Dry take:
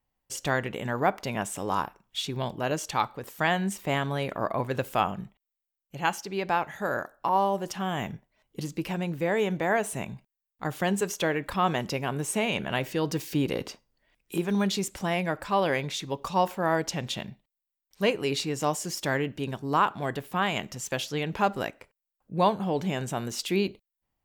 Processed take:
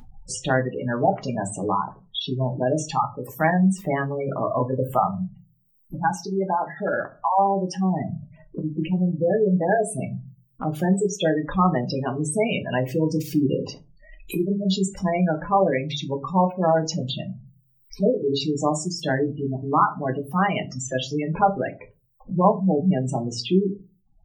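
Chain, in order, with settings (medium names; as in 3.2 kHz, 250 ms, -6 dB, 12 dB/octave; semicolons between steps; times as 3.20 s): spectral gate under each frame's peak -10 dB strong; upward compressor, threshold -32 dBFS; reverberation RT60 0.30 s, pre-delay 4 ms, DRR 4.5 dB; trim +4 dB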